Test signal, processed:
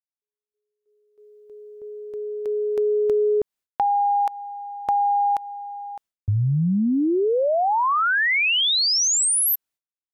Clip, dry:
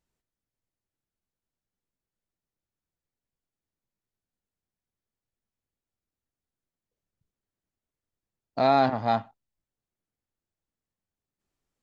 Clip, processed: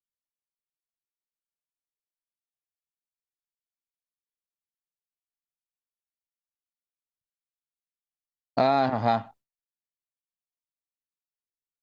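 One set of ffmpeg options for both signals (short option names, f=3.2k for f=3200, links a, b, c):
-af "acompressor=threshold=-25dB:ratio=6,agate=range=-33dB:threshold=-53dB:ratio=3:detection=peak,volume=6.5dB"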